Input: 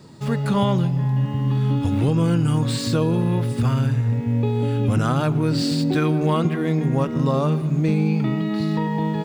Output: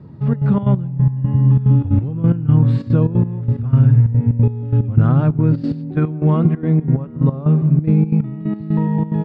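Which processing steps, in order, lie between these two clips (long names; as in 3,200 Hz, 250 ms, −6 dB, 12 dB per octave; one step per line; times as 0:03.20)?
low-pass filter 1,800 Hz 12 dB per octave
parametric band 86 Hz +14.5 dB 3 octaves
gate pattern "xxxx.xx.x...x.." 181 BPM −12 dB
level −3 dB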